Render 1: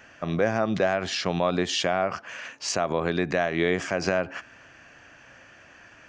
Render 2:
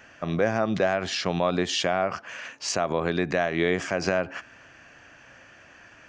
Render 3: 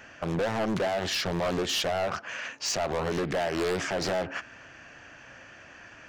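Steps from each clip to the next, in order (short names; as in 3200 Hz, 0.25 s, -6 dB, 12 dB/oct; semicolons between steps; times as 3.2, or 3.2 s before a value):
nothing audible
hard clip -26.5 dBFS, distortion -5 dB; Doppler distortion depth 0.64 ms; gain +2 dB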